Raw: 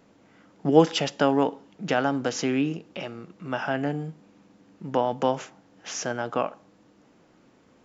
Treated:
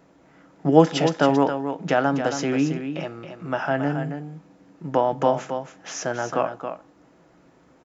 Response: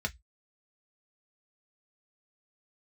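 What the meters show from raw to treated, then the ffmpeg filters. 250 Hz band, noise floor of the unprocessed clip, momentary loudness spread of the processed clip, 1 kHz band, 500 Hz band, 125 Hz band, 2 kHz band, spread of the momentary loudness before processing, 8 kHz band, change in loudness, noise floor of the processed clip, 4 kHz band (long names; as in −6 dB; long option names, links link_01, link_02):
+3.5 dB, −59 dBFS, 16 LU, +4.0 dB, +3.5 dB, +5.0 dB, +2.5 dB, 17 LU, can't be measured, +3.0 dB, −57 dBFS, −0.5 dB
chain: -filter_complex "[0:a]aecho=1:1:274:0.376,asplit=2[link_01][link_02];[1:a]atrim=start_sample=2205[link_03];[link_02][link_03]afir=irnorm=-1:irlink=0,volume=-11.5dB[link_04];[link_01][link_04]amix=inputs=2:normalize=0,volume=1.5dB"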